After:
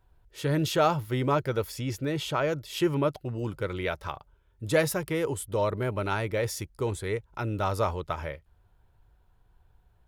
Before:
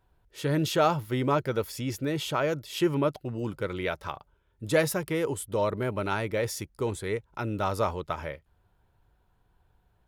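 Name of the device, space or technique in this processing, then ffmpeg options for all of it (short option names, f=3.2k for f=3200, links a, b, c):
low shelf boost with a cut just above: -filter_complex "[0:a]asettb=1/sr,asplit=3[a][b][c];[a]atrim=end=1.744[d];[b]atrim=start=1.74:end=2.65,asetpts=PTS-STARTPTS,afade=t=in:d=0.004:c=qsin,afade=t=out:st=0.906:d=0.004:c=qsin,highshelf=f=9.3k:g=-5[e];[c]atrim=start=2.646[f];[d][e]acrossfade=d=0.004:c1=hsin:c2=qsin[g];[g][f]acrossfade=d=0.004:c1=qsin:c2=hsin,lowshelf=f=89:g=7.5,equalizer=f=220:t=o:w=0.8:g=-3.5"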